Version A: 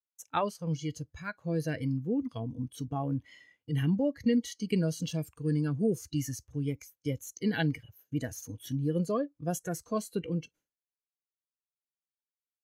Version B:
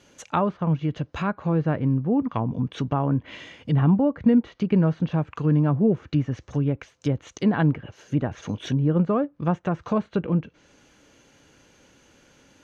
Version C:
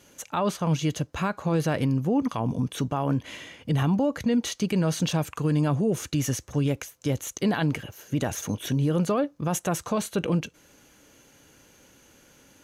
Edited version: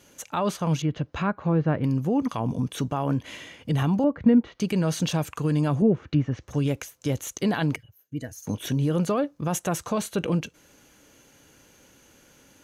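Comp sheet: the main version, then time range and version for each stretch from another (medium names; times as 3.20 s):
C
0.82–1.84 s: from B
4.04–4.60 s: from B
5.82–6.48 s: from B
7.76–8.47 s: from A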